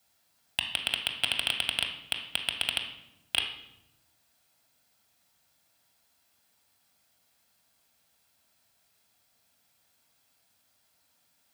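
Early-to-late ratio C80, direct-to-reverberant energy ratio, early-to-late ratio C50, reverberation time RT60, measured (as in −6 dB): 10.5 dB, 3.0 dB, 7.0 dB, 0.90 s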